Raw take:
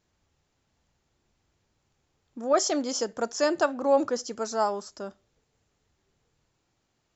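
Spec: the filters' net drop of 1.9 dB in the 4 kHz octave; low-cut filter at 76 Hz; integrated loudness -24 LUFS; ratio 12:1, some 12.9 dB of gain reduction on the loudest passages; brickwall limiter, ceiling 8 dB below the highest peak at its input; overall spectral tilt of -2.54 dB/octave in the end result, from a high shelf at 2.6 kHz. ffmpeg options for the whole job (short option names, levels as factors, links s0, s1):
-af "highpass=76,highshelf=f=2600:g=3,equalizer=f=4000:t=o:g=-6.5,acompressor=threshold=0.0316:ratio=12,volume=5.31,alimiter=limit=0.2:level=0:latency=1"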